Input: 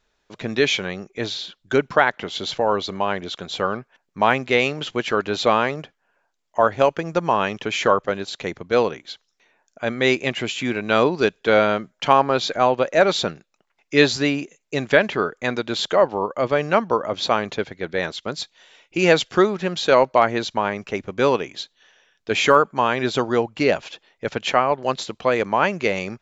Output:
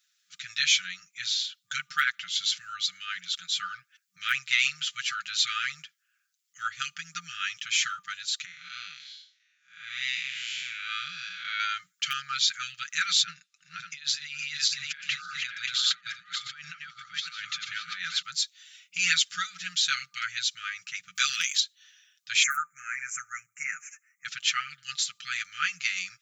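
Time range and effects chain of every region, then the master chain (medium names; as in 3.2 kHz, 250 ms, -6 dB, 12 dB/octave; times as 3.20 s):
8.45–11.60 s: spectral blur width 202 ms + low-pass 4.8 kHz + bass shelf 99 Hz -9.5 dB
13.23–18.22 s: backward echo that repeats 290 ms, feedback 43%, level -4 dB + compressor with a negative ratio -27 dBFS + distance through air 71 m
21.15–21.60 s: tone controls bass -9 dB, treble +7 dB + transient shaper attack +6 dB, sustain +11 dB
22.43–24.25 s: elliptic band-stop 2.2–6.3 kHz, stop band 60 dB + tone controls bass -11 dB, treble 0 dB
whole clip: FFT band-reject 190–1200 Hz; differentiator; comb 6.7 ms; trim +5.5 dB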